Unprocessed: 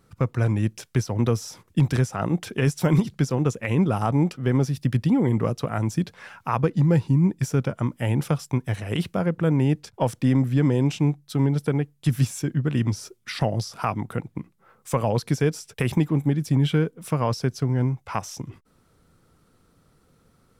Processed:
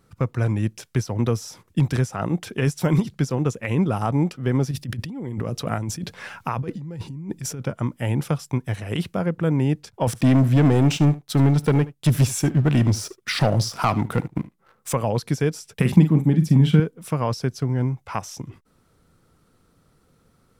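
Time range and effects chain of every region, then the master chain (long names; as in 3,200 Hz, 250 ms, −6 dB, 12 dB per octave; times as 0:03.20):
0:04.71–0:07.61: parametric band 1,100 Hz −2.5 dB 1.7 octaves + compressor whose output falls as the input rises −29 dBFS
0:10.07–0:14.93: leveller curve on the samples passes 2 + single-tap delay 74 ms −18.5 dB
0:15.74–0:16.80: parametric band 190 Hz +12.5 dB 0.59 octaves + double-tracking delay 45 ms −9 dB
whole clip: no processing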